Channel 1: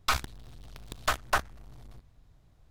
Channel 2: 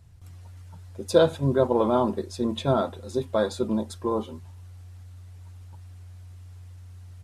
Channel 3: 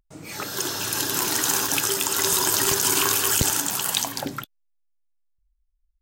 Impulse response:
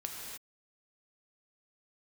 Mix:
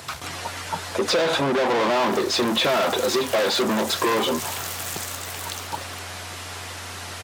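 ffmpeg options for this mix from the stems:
-filter_complex "[0:a]volume=0.501[s0];[1:a]asplit=2[s1][s2];[s2]highpass=f=720:p=1,volume=100,asoftclip=type=tanh:threshold=0.501[s3];[s1][s3]amix=inputs=2:normalize=0,lowpass=f=7800:p=1,volume=0.501,acrossover=split=5800[s4][s5];[s5]acompressor=threshold=0.0126:ratio=4:attack=1:release=60[s6];[s4][s6]amix=inputs=2:normalize=0,highpass=f=230:p=1,volume=0.794[s7];[2:a]aeval=exprs='val(0)*sgn(sin(2*PI*270*n/s))':c=same,adelay=1550,volume=0.282[s8];[s0][s7][s8]amix=inputs=3:normalize=0,highpass=100,acompressor=threshold=0.126:ratio=6"

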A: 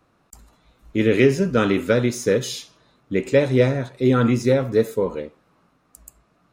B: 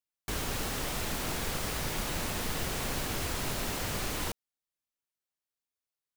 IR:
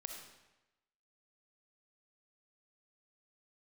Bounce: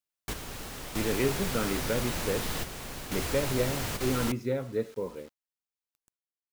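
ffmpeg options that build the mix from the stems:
-filter_complex "[0:a]lowpass=3900,acrusher=bits=6:mix=0:aa=0.000001,volume=0.237,asplit=2[s0][s1];[1:a]volume=1.06[s2];[s1]apad=whole_len=272042[s3];[s2][s3]sidechaingate=range=0.447:threshold=0.00251:ratio=16:detection=peak[s4];[s0][s4]amix=inputs=2:normalize=0"

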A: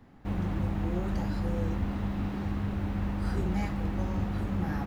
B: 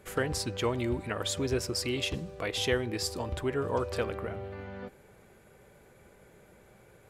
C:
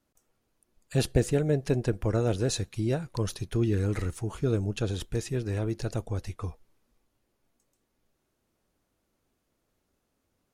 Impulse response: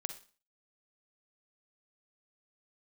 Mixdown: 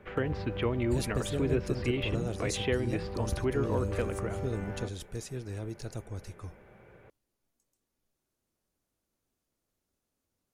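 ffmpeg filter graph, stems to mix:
-filter_complex "[0:a]acrossover=split=120[s0][s1];[s1]acompressor=threshold=0.0178:ratio=6[s2];[s0][s2]amix=inputs=2:normalize=0,volume=0.299[s3];[1:a]lowpass=f=2800:w=0.5412,lowpass=f=2800:w=1.3066,volume=1.26[s4];[2:a]bass=f=250:g=1,treble=f=4000:g=6,volume=0.355[s5];[s3][s4][s5]amix=inputs=3:normalize=0,acrossover=split=420|3000[s6][s7][s8];[s7]acompressor=threshold=0.0158:ratio=3[s9];[s6][s9][s8]amix=inputs=3:normalize=0"

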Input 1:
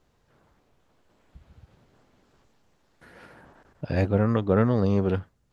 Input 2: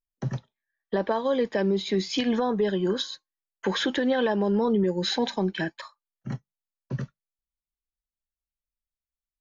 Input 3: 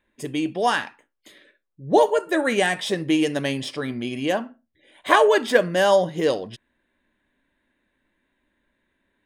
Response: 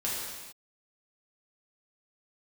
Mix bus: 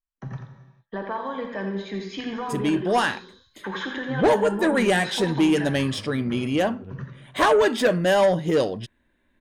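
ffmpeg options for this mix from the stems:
-filter_complex "[0:a]adelay=1750,volume=0.119,asplit=2[s0][s1];[s1]volume=0.422[s2];[1:a]firequalizer=gain_entry='entry(480,0);entry(1100,11);entry(4500,-3)':delay=0.05:min_phase=1,volume=0.237,asplit=4[s3][s4][s5][s6];[s4]volume=0.376[s7];[s5]volume=0.596[s8];[2:a]adelay=2300,volume=1.12[s9];[s6]apad=whole_len=320830[s10];[s0][s10]sidechaincompress=threshold=0.00562:ratio=8:attack=8.6:release=1420[s11];[3:a]atrim=start_sample=2205[s12];[s7][s12]afir=irnorm=-1:irlink=0[s13];[s2][s8]amix=inputs=2:normalize=0,aecho=0:1:86:1[s14];[s11][s3][s9][s13][s14]amix=inputs=5:normalize=0,lowshelf=f=180:g=8.5,asoftclip=type=tanh:threshold=0.237"

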